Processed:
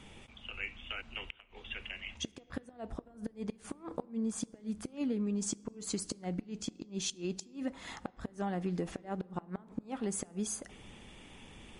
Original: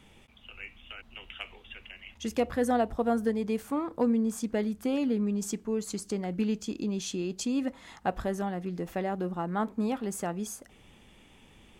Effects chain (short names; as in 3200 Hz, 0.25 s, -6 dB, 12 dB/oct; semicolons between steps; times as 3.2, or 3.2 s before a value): compressor 8:1, threshold -34 dBFS, peak gain reduction 13 dB; flipped gate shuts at -28 dBFS, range -26 dB; on a send at -21.5 dB: reverb RT60 2.1 s, pre-delay 6 ms; on the sum: gain +4 dB; MP3 48 kbps 44100 Hz